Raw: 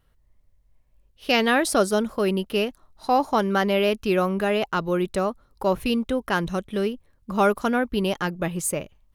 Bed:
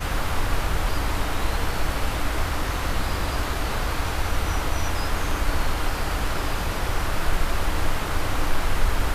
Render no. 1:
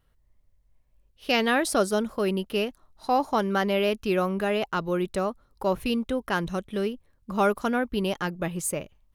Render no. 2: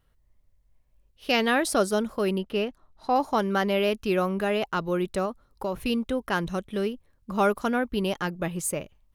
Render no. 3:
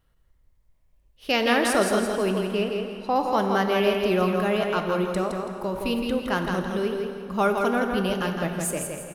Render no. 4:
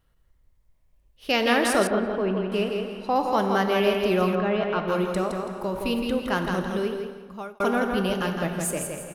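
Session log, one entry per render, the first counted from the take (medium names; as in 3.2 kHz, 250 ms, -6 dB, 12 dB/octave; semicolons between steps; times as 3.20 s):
trim -3 dB
2.38–3.16 s: low-pass 3.1 kHz 6 dB/octave; 5.25–5.79 s: compression, threshold -24 dBFS
on a send: feedback delay 165 ms, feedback 33%, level -5 dB; on the sum: plate-style reverb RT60 2.7 s, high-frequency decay 0.75×, DRR 6 dB
1.87–2.52 s: distance through air 410 m; 4.35–4.88 s: distance through air 210 m; 6.77–7.60 s: fade out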